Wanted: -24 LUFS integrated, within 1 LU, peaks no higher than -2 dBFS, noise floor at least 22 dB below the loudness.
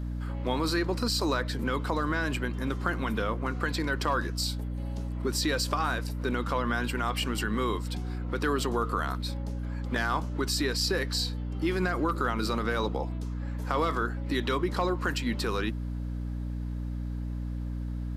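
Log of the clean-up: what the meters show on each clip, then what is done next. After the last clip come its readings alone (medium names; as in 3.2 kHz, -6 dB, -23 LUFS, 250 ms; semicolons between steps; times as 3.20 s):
hum 60 Hz; highest harmonic 300 Hz; hum level -31 dBFS; loudness -30.5 LUFS; peak level -13.0 dBFS; loudness target -24.0 LUFS
-> de-hum 60 Hz, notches 5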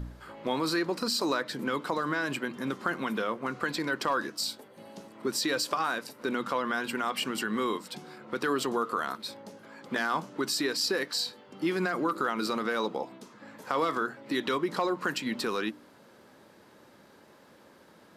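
hum not found; loudness -31.0 LUFS; peak level -13.5 dBFS; loudness target -24.0 LUFS
-> trim +7 dB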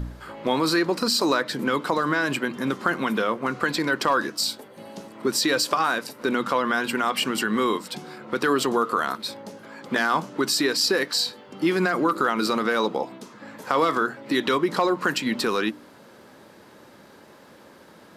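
loudness -24.0 LUFS; peak level -6.5 dBFS; noise floor -50 dBFS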